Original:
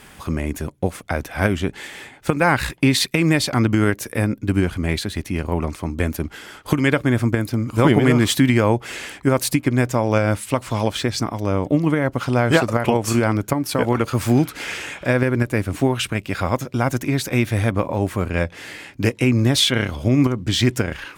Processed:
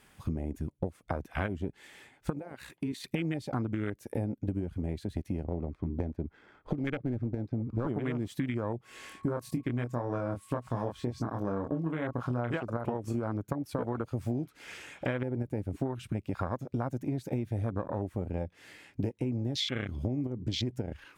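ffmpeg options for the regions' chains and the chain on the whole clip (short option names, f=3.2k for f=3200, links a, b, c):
-filter_complex "[0:a]asettb=1/sr,asplit=3[a][b][c];[a]atrim=end=2.394[d];[b]atrim=start=2.39:end=3.04,asetpts=PTS-STARTPTS,afade=t=in:d=0.004:c=qsin,afade=t=out:st=0.646:d=0.004:c=qsin,highpass=f=230:p=1,bandreject=f=5.1k:w=13,acompressor=threshold=-27dB:ratio=4:attack=3.2:release=140:knee=1:detection=peak[e];[c]atrim=start=3.036[f];[d][e]acrossfade=d=0.004:c1=hsin:c2=qsin[g];[g][f]acrossfade=d=0.004:c1=qsin:c2=hsin,asettb=1/sr,asplit=3[h][i][j];[h]atrim=end=5.444[k];[i]atrim=start=5.44:end=7.87,asetpts=PTS-STARTPTS,afade=t=in:d=0.004:c=qsin,afade=t=out:st=2.426:d=0.004:c=qsin,bandreject=f=2.9k:w=9.6,adynamicsmooth=sensitivity=2:basefreq=1.8k,aeval=exprs='clip(val(0),-1,0.15)':c=same[l];[j]atrim=start=7.866[m];[k][l]acrossfade=d=0.004:c1=hsin:c2=qsin[n];[n][m]acrossfade=d=0.004:c1=qsin:c2=hsin,asettb=1/sr,asplit=3[o][p][q];[o]atrim=end=8.844[r];[p]atrim=start=8.84:end=12.55,asetpts=PTS-STARTPTS,afade=t=in:d=0.004:c=qsin,afade=t=out:st=3.706:d=0.004:c=qsin,asplit=2[s][t];[t]adelay=25,volume=-3.5dB[u];[s][u]amix=inputs=2:normalize=0,atrim=end_sample=163611,aeval=exprs='val(0)+0.0141*sin(2*PI*1100*n/s)':c=same[v];[q]atrim=start=12.546[w];[r][v]acrossfade=d=0.004:c1=hsin:c2=qsin[x];[x][w]acrossfade=d=0.004:c1=qsin:c2=hsin,afwtdn=0.0794,acompressor=threshold=-29dB:ratio=12"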